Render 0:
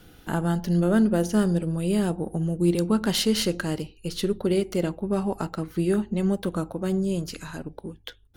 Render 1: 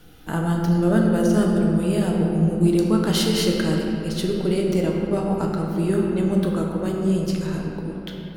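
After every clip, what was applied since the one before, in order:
rectangular room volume 180 cubic metres, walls hard, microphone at 0.49 metres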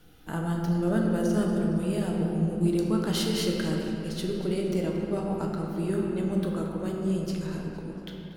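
feedback echo with a swinging delay time 231 ms, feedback 53%, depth 167 cents, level −16 dB
level −7 dB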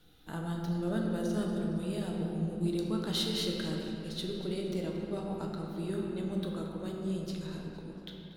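parametric band 3,800 Hz +12.5 dB 0.26 octaves
level −7 dB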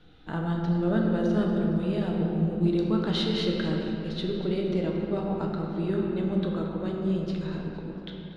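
low-pass filter 3,000 Hz 12 dB per octave
level +7.5 dB

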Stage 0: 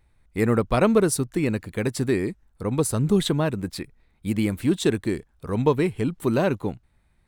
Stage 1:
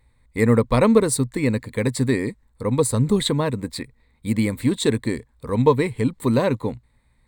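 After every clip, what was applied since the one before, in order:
EQ curve with evenly spaced ripples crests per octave 0.99, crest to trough 9 dB
level +1.5 dB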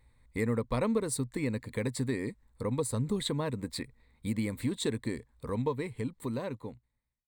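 fade-out on the ending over 2.23 s
downward compressor 2 to 1, threshold −30 dBFS, peak gain reduction 11.5 dB
level −4 dB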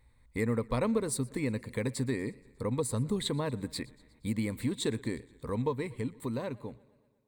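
feedback echo with a swinging delay time 119 ms, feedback 61%, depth 79 cents, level −23 dB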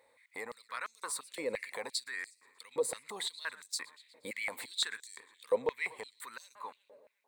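brickwall limiter −29.5 dBFS, peak gain reduction 11.5 dB
high-pass on a step sequencer 5.8 Hz 540–5,900 Hz
level +3 dB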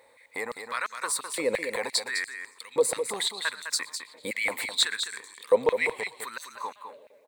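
single-tap delay 206 ms −8 dB
level +9 dB

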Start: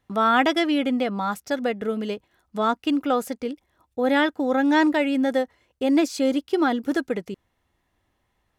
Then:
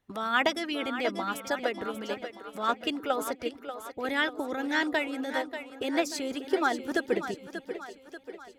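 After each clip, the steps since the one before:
echo with a time of its own for lows and highs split 300 Hz, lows 127 ms, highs 587 ms, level −10 dB
harmonic and percussive parts rebalanced harmonic −13 dB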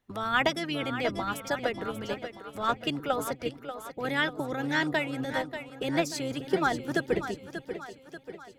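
sub-octave generator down 1 octave, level −5 dB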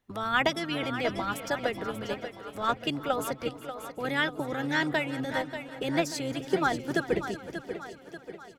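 repeating echo 371 ms, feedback 45%, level −17 dB

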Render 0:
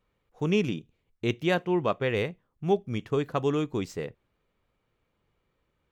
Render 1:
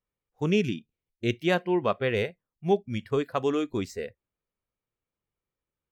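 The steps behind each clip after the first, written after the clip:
noise reduction from a noise print of the clip's start 17 dB
level +1 dB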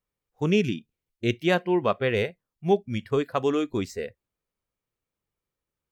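floating-point word with a short mantissa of 8 bits
level +2 dB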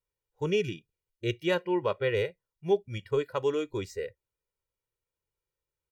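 comb filter 2.1 ms, depth 73%
level −6.5 dB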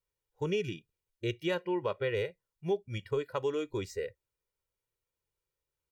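downward compressor 2 to 1, threshold −31 dBFS, peak gain reduction 7 dB

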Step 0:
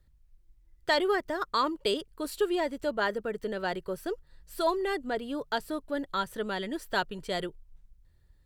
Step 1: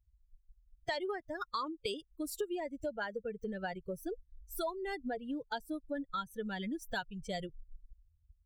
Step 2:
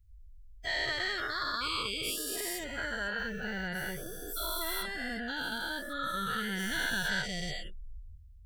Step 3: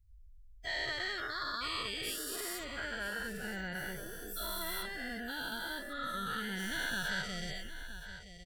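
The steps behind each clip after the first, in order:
spectral dynamics exaggerated over time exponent 2; downward compressor 5 to 1, threshold −43 dBFS, peak gain reduction 17.5 dB; level +7 dB
every bin's largest magnitude spread in time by 480 ms; flat-topped bell 540 Hz −11.5 dB 2.4 octaves
single-tap delay 970 ms −12.5 dB; level −4 dB

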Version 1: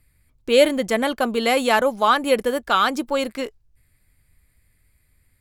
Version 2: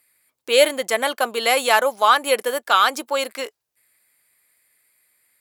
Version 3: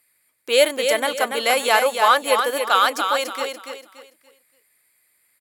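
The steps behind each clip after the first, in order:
high-pass filter 550 Hz 12 dB per octave; high-shelf EQ 7,500 Hz +6.5 dB; level +2.5 dB
repeating echo 287 ms, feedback 31%, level −6 dB; level −1 dB

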